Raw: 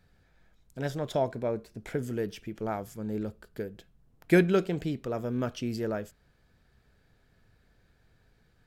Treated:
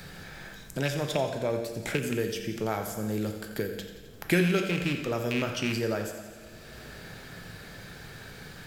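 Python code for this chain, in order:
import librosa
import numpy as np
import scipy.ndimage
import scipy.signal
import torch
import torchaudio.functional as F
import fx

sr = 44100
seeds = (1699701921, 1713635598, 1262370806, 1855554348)

y = fx.rattle_buzz(x, sr, strikes_db=-33.0, level_db=-25.0)
y = fx.high_shelf(y, sr, hz=2200.0, db=9.5)
y = fx.echo_feedback(y, sr, ms=86, feedback_pct=50, wet_db=-13.0)
y = fx.rev_double_slope(y, sr, seeds[0], early_s=0.82, late_s=2.9, knee_db=-24, drr_db=5.0)
y = fx.band_squash(y, sr, depth_pct=70)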